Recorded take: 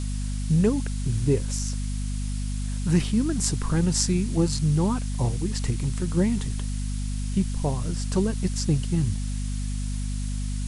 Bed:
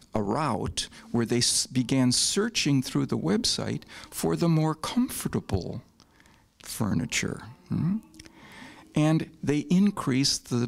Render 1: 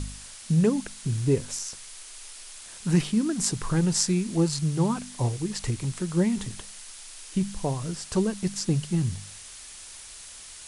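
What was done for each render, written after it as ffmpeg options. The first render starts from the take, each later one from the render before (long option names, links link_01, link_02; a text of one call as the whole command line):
ffmpeg -i in.wav -af "bandreject=frequency=50:width_type=h:width=4,bandreject=frequency=100:width_type=h:width=4,bandreject=frequency=150:width_type=h:width=4,bandreject=frequency=200:width_type=h:width=4,bandreject=frequency=250:width_type=h:width=4" out.wav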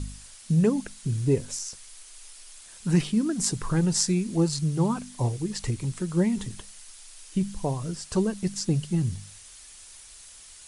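ffmpeg -i in.wav -af "afftdn=noise_reduction=6:noise_floor=-44" out.wav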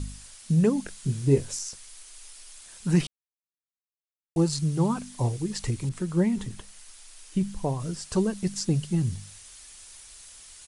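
ffmpeg -i in.wav -filter_complex "[0:a]asplit=3[link_01][link_02][link_03];[link_01]afade=type=out:start_time=0.87:duration=0.02[link_04];[link_02]asplit=2[link_05][link_06];[link_06]adelay=22,volume=-6dB[link_07];[link_05][link_07]amix=inputs=2:normalize=0,afade=type=in:start_time=0.87:duration=0.02,afade=type=out:start_time=1.52:duration=0.02[link_08];[link_03]afade=type=in:start_time=1.52:duration=0.02[link_09];[link_04][link_08][link_09]amix=inputs=3:normalize=0,asettb=1/sr,asplit=3[link_10][link_11][link_12];[link_10]atrim=end=5.894[link_13];[link_11]atrim=start=5.89:end=7.8,asetpts=PTS-STARTPTS,afade=type=in:duration=0.004:curve=qsin,afade=type=out:start_time=1.906:duration=0.004:curve=qsin,adynamicequalizer=threshold=0.00251:dfrequency=3000:dqfactor=0.7:tfrequency=3000:tqfactor=0.7:attack=5:release=100:ratio=0.375:range=2.5:mode=cutabove:tftype=highshelf[link_14];[link_12]atrim=start=7.796[link_15];[link_13][link_14]acrossfade=duration=0.004:curve1=hsin:curve2=qsin[link_16];[link_16][link_15]acrossfade=duration=0.004:curve1=qsin:curve2=hsin,asplit=3[link_17][link_18][link_19];[link_17]atrim=end=3.07,asetpts=PTS-STARTPTS,afade=type=out:start_time=3.066:duration=0.004:curve=hsin[link_20];[link_18]atrim=start=3.07:end=4.36,asetpts=PTS-STARTPTS,volume=0[link_21];[link_19]atrim=start=4.36,asetpts=PTS-STARTPTS,afade=type=in:duration=0.004:curve=hsin[link_22];[link_20][link_21][link_22]concat=n=3:v=0:a=1" out.wav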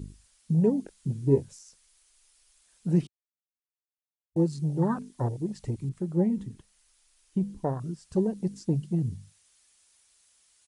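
ffmpeg -i in.wav -af "afwtdn=0.0282,highpass=frequency=130:poles=1" out.wav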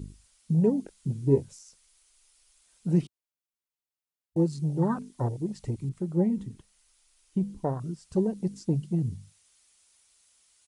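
ffmpeg -i in.wav -af "bandreject=frequency=1700:width=16" out.wav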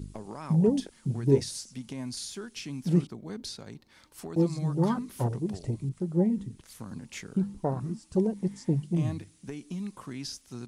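ffmpeg -i in.wav -i bed.wav -filter_complex "[1:a]volume=-14dB[link_01];[0:a][link_01]amix=inputs=2:normalize=0" out.wav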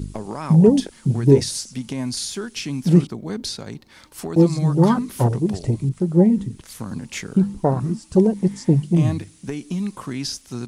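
ffmpeg -i in.wav -af "volume=10.5dB,alimiter=limit=-3dB:level=0:latency=1" out.wav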